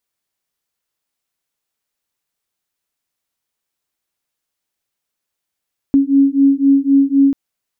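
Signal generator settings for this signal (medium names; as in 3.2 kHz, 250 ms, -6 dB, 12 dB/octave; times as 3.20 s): beating tones 274 Hz, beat 3.9 Hz, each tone -12 dBFS 1.39 s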